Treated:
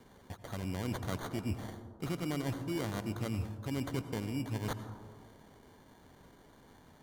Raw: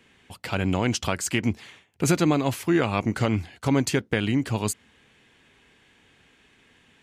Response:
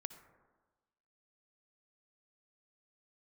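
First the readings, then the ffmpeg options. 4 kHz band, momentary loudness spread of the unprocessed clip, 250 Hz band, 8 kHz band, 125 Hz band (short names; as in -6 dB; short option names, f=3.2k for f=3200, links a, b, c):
-13.5 dB, 8 LU, -13.0 dB, -18.0 dB, -10.0 dB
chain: -filter_complex "[0:a]lowshelf=f=380:g=5.5,areverse,acompressor=threshold=-33dB:ratio=5,areverse,acrusher=samples=17:mix=1:aa=0.000001[a];[1:a]atrim=start_sample=2205,asetrate=30870,aresample=44100[b];[a][b]afir=irnorm=-1:irlink=0"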